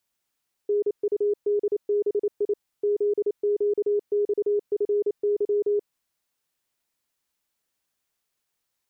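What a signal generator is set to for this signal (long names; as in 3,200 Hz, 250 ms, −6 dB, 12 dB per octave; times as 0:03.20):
Morse code "NUDBI ZQXFY" 28 words per minute 412 Hz −19.5 dBFS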